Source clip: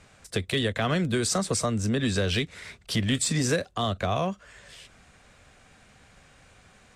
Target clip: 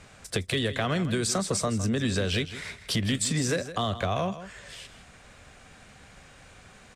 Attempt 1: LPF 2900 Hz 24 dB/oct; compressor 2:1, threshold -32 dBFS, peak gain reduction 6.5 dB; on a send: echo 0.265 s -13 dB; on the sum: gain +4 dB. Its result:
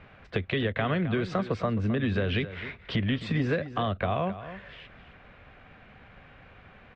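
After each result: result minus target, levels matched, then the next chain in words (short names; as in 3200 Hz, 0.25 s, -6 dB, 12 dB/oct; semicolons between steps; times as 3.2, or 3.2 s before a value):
echo 0.104 s late; 4000 Hz band -5.5 dB
LPF 2900 Hz 24 dB/oct; compressor 2:1, threshold -32 dBFS, peak gain reduction 6.5 dB; on a send: echo 0.161 s -13 dB; on the sum: gain +4 dB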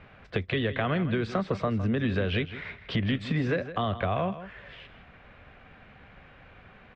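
4000 Hz band -5.5 dB
compressor 2:1, threshold -32 dBFS, peak gain reduction 7 dB; on a send: echo 0.161 s -13 dB; on the sum: gain +4 dB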